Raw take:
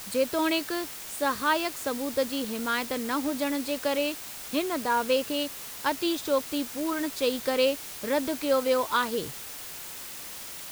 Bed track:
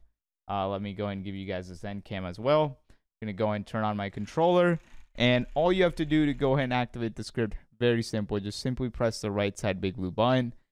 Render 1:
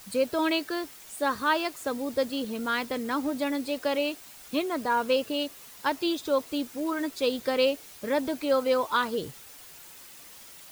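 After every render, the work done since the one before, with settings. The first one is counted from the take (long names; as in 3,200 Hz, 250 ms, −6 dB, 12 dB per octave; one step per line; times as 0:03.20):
broadband denoise 9 dB, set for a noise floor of −40 dBFS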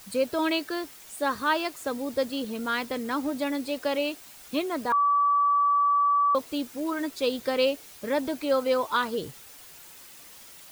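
0:04.92–0:06.35: beep over 1,150 Hz −19 dBFS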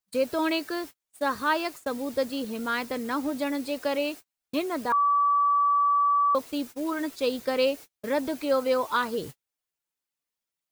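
noise gate −38 dBFS, range −41 dB
dynamic equaliser 3,300 Hz, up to −4 dB, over −47 dBFS, Q 4.1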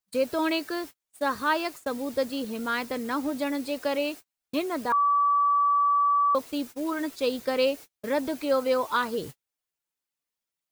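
no processing that can be heard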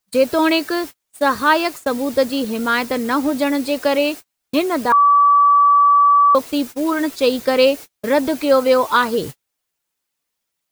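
level +10.5 dB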